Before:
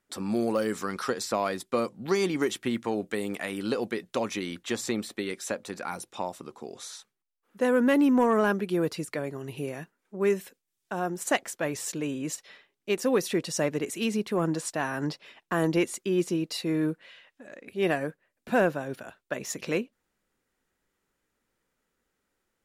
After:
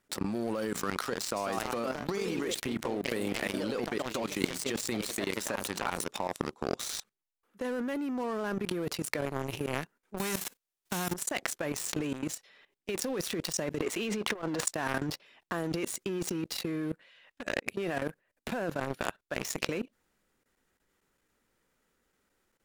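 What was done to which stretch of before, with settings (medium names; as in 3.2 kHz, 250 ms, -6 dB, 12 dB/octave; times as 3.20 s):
1.16–6.56 s: ever faster or slower copies 165 ms, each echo +2 st, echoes 2, each echo -6 dB
10.17–11.12 s: formants flattened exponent 0.3
13.82–14.65 s: FFT filter 110 Hz 0 dB, 780 Hz +14 dB, 3.4 kHz +8 dB, 13 kHz -7 dB
whole clip: level held to a coarse grid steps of 16 dB; waveshaping leveller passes 3; compressor with a negative ratio -32 dBFS, ratio -1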